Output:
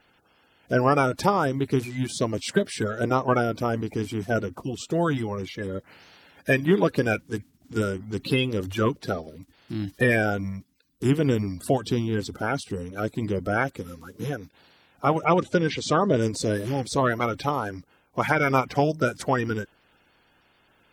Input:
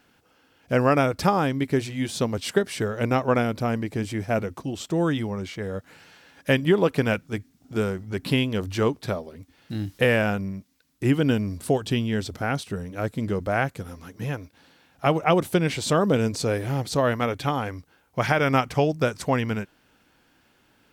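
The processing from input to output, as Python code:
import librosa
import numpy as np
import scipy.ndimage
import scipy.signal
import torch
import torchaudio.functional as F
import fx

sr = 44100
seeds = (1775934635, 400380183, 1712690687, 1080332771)

y = fx.spec_quant(x, sr, step_db=30)
y = fx.lowpass(y, sr, hz=6800.0, slope=24, at=(15.25, 16.22))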